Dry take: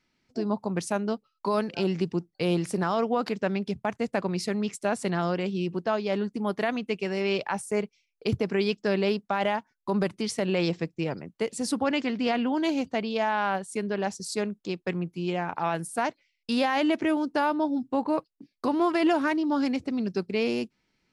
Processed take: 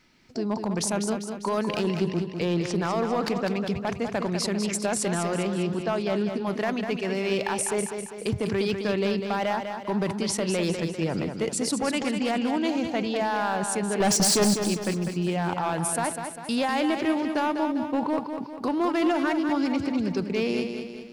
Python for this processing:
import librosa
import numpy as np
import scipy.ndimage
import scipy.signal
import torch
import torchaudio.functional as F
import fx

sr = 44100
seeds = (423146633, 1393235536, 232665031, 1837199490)

p1 = fx.lowpass(x, sr, hz=5600.0, slope=24, at=(2.05, 2.75))
p2 = fx.over_compress(p1, sr, threshold_db=-39.0, ratio=-1.0)
p3 = p1 + F.gain(torch.from_numpy(p2), 1.0).numpy()
p4 = fx.leveller(p3, sr, passes=3, at=(14.0, 14.63))
p5 = np.clip(p4, -10.0 ** (-17.5 / 20.0), 10.0 ** (-17.5 / 20.0))
p6 = fx.echo_feedback(p5, sr, ms=199, feedback_pct=50, wet_db=-7.0)
p7 = fx.band_squash(p6, sr, depth_pct=40, at=(19.49, 20.13))
y = F.gain(torch.from_numpy(p7), -1.5).numpy()